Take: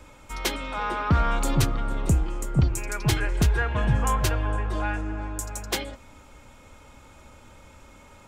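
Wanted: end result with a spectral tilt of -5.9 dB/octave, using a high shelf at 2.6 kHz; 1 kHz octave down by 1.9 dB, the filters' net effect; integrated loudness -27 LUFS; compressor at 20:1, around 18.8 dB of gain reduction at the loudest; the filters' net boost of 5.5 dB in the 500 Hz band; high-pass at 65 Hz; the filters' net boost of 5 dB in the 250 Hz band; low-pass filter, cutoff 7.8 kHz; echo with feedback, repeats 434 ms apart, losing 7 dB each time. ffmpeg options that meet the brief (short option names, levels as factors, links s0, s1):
-af "highpass=65,lowpass=7800,equalizer=f=250:t=o:g=5.5,equalizer=f=500:t=o:g=6.5,equalizer=f=1000:t=o:g=-3.5,highshelf=f=2600:g=-5.5,acompressor=threshold=0.0224:ratio=20,aecho=1:1:434|868|1302|1736|2170:0.447|0.201|0.0905|0.0407|0.0183,volume=3.76"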